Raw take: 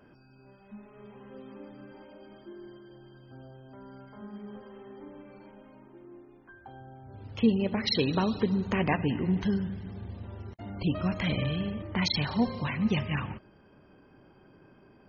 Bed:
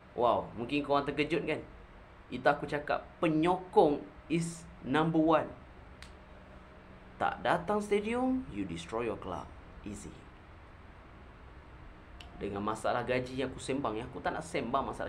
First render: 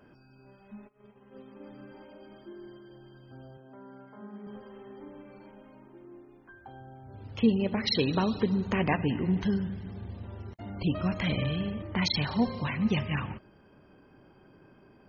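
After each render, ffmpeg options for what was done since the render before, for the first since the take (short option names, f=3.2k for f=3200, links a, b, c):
-filter_complex "[0:a]asplit=3[a][b][c];[a]afade=t=out:st=0.87:d=0.02[d];[b]agate=range=-33dB:threshold=-43dB:ratio=3:release=100:detection=peak,afade=t=in:st=0.87:d=0.02,afade=t=out:st=1.64:d=0.02[e];[c]afade=t=in:st=1.64:d=0.02[f];[d][e][f]amix=inputs=3:normalize=0,asettb=1/sr,asplit=3[g][h][i];[g]atrim=end=3.574[j];[h]atrim=start=3.57:end=4.47,asetpts=PTS-STARTPTS,afade=t=in:d=0.004:c=qsin,afade=t=out:st=0.896:d=0.004:c=qsin,highpass=170,lowpass=2.2k[k];[i]atrim=start=4.466[l];[j][k]acrossfade=d=0.004:c1=hsin:c2=qsin[m];[m][l]acrossfade=d=0.004:c1=qsin:c2=hsin"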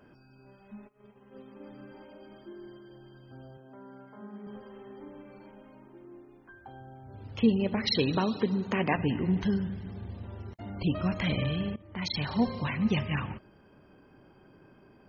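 -filter_complex "[0:a]asettb=1/sr,asplit=3[a][b][c];[a]atrim=end=8.174[d];[b]atrim=start=8.17:end=8.96,asetpts=PTS-STARTPTS,afade=t=in:d=0.004:c=qsin,afade=t=out:st=0.786:d=0.004:c=qsin,highpass=160[e];[c]atrim=start=8.956[f];[d][e]acrossfade=d=0.004:c1=hsin:c2=qsin[g];[g][f]acrossfade=d=0.004:c1=qsin:c2=hsin,asplit=2[h][i];[h]atrim=end=11.76,asetpts=PTS-STARTPTS,afade=t=out:st=11.756:d=0.004:c=hsin:silence=0.112202[j];[i]atrim=start=11.76,asetpts=PTS-STARTPTS,afade=t=in:d=0.64:silence=0.112202[k];[j][k]concat=n=2:v=0:a=1"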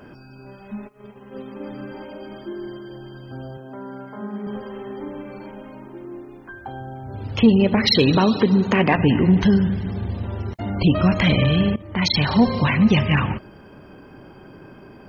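-filter_complex "[0:a]asplit=2[a][b];[b]alimiter=limit=-22.5dB:level=0:latency=1:release=123,volume=2dB[c];[a][c]amix=inputs=2:normalize=0,acontrast=73"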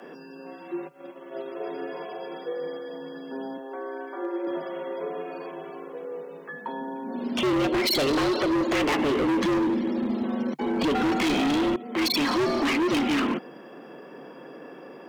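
-af "afreqshift=140,volume=21.5dB,asoftclip=hard,volume=-21.5dB"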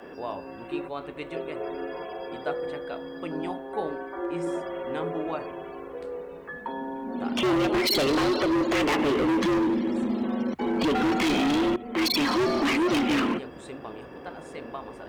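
-filter_complex "[1:a]volume=-6.5dB[a];[0:a][a]amix=inputs=2:normalize=0"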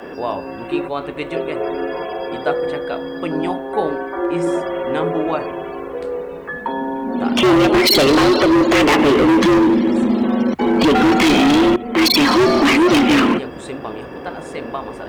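-af "volume=11dB"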